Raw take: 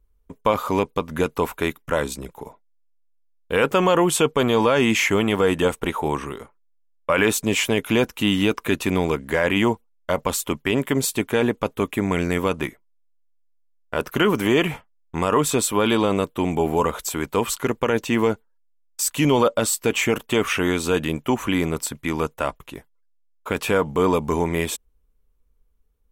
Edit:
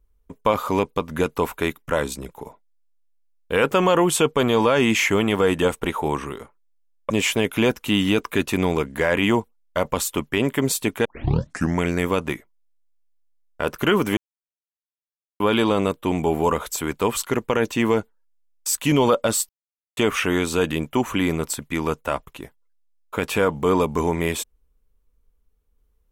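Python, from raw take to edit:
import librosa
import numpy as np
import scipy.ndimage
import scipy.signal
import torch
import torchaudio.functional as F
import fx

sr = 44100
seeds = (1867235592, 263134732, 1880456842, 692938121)

y = fx.edit(x, sr, fx.cut(start_s=7.1, length_s=0.33),
    fx.tape_start(start_s=11.38, length_s=0.77),
    fx.silence(start_s=14.5, length_s=1.23),
    fx.silence(start_s=19.82, length_s=0.48), tone=tone)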